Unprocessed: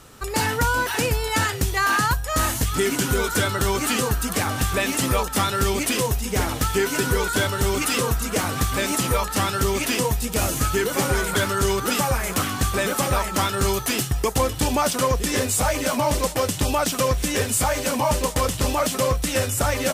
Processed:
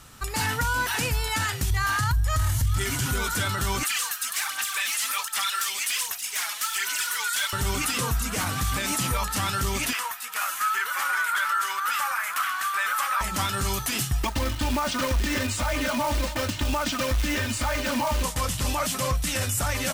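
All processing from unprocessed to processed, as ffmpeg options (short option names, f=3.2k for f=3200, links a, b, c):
-filter_complex "[0:a]asettb=1/sr,asplit=3[a][b][c];[a]atrim=end=1.704[d];[b]atrim=start=1.7:end=3.06,asetpts=PTS-STARTPTS,afade=t=in:d=0.004:c=qsin,afade=t=out:st=1.356:d=0.004:c=qsin,lowshelf=f=140:t=q:w=3:g=10,acompressor=threshold=-18dB:ratio=2:attack=3.2:release=140:knee=1:detection=peak,bandreject=f=2.6k:w=20[e];[c]atrim=start=3.056[f];[d][e]acrossfade=d=0.004:c1=hsin:c2=qsin[g];[g][f]acrossfade=d=0.004:c1=qsin:c2=hsin,asettb=1/sr,asplit=3[h][i][j];[h]atrim=end=3.834[k];[i]atrim=start=3.83:end=7.53,asetpts=PTS-STARTPTS,afade=t=in:d=0.004:c=qsin,afade=t=out:st=3.696:d=0.004:c=qsin,highpass=1.5k,aphaser=in_gain=1:out_gain=1:delay=4.9:decay=0.55:speed=1.3:type=sinusoidal[l];[j]atrim=start=7.526[m];[k][l]acrossfade=d=0.004:c1=hsin:c2=qsin[n];[n][m]acrossfade=d=0.004:c1=qsin:c2=hsin,asettb=1/sr,asplit=3[o][p][q];[o]atrim=end=9.934[r];[p]atrim=start=9.93:end=13.21,asetpts=PTS-STARTPTS,afade=t=in:d=0.004:c=qsin,afade=t=out:st=3.276:d=0.004:c=qsin,highpass=f=1.3k:t=q:w=2.4,equalizer=f=6.3k:t=o:w=2.2:g=-8[s];[q]atrim=start=13.206[t];[r][s]acrossfade=d=0.004:c1=hsin:c2=qsin[u];[u][t]acrossfade=d=0.004:c1=qsin:c2=hsin,asettb=1/sr,asplit=3[v][w][x];[v]atrim=end=14.234[y];[w]atrim=start=14.23:end=18.23,asetpts=PTS-STARTPTS,afade=t=in:d=0.004:c=qsin,afade=t=out:st=3.996:d=0.004:c=qsin,lowpass=4.1k,aecho=1:1:3.3:0.95,atrim=end_sample=176400,acrusher=bits=3:mode=log:mix=0:aa=0.000001[z];[x]atrim=start=18.226[aa];[y][z]acrossfade=d=0.004:c1=hsin:c2=qsin[ab];[ab][aa]acrossfade=d=0.004:c1=qsin:c2=hsin,equalizer=f=430:t=o:w=1.3:g=-10,alimiter=limit=-16.5dB:level=0:latency=1:release=20"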